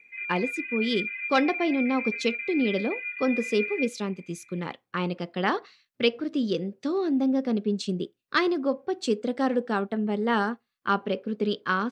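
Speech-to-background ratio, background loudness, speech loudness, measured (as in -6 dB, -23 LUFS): 4.5 dB, -32.0 LUFS, -27.5 LUFS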